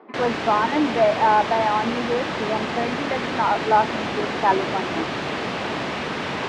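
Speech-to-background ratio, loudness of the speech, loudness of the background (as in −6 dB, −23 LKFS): 4.0 dB, −22.5 LKFS, −26.5 LKFS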